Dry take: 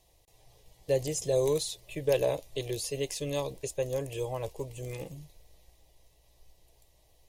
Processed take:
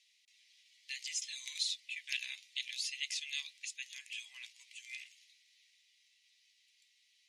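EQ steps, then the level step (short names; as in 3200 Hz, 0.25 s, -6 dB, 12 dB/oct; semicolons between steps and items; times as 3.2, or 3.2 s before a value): elliptic high-pass 2100 Hz, stop band 80 dB; air absorption 72 m; high shelf 7900 Hz -11.5 dB; +7.5 dB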